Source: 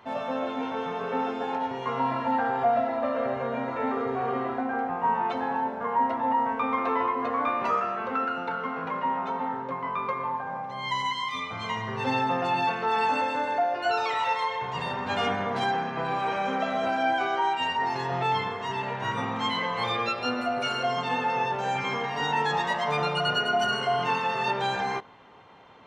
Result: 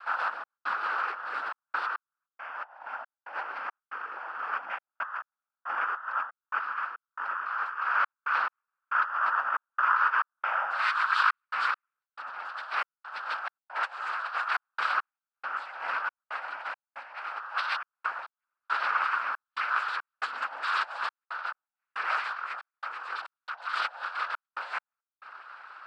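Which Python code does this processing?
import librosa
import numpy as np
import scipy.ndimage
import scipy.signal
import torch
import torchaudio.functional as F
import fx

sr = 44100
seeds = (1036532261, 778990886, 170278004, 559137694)

y = fx.lowpass(x, sr, hz=1800.0, slope=6)
y = fx.over_compress(y, sr, threshold_db=-33.0, ratio=-0.5)
y = fx.noise_vocoder(y, sr, seeds[0], bands=8)
y = fx.highpass_res(y, sr, hz=1300.0, q=3.2)
y = fx.step_gate(y, sr, bpm=69, pattern='xx.xxxx.x..xxx.', floor_db=-60.0, edge_ms=4.5)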